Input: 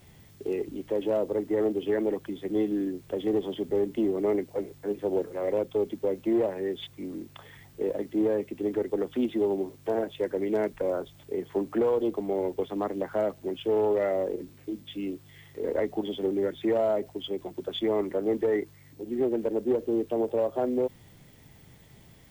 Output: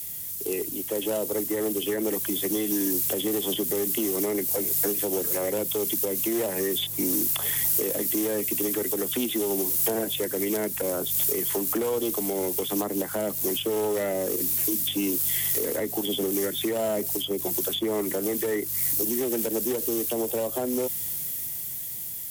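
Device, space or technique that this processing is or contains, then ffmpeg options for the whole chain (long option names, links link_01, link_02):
FM broadcast chain: -filter_complex "[0:a]highpass=60,dynaudnorm=framelen=370:gausssize=13:maxgain=12.5dB,acrossover=split=120|280|1000[link_01][link_02][link_03][link_04];[link_01]acompressor=threshold=-48dB:ratio=4[link_05];[link_02]acompressor=threshold=-29dB:ratio=4[link_06];[link_03]acompressor=threshold=-27dB:ratio=4[link_07];[link_04]acompressor=threshold=-39dB:ratio=4[link_08];[link_05][link_06][link_07][link_08]amix=inputs=4:normalize=0,aemphasis=mode=production:type=75fm,alimiter=limit=-18dB:level=0:latency=1:release=335,asoftclip=type=hard:threshold=-21.5dB,lowpass=frequency=15000:width=0.5412,lowpass=frequency=15000:width=1.3066,aemphasis=mode=production:type=75fm,volume=1.5dB"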